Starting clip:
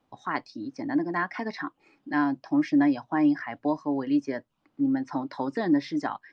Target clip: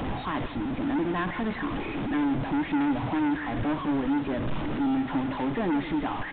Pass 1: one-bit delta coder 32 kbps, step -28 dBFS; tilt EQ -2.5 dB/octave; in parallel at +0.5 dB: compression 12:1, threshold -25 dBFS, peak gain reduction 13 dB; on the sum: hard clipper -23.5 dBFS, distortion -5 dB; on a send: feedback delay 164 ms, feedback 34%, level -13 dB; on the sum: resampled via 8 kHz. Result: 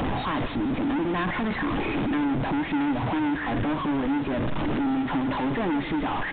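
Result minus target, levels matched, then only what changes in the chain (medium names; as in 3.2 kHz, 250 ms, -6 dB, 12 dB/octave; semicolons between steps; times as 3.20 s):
compression: peak gain reduction +13 dB
remove: compression 12:1, threshold -25 dBFS, peak gain reduction 13 dB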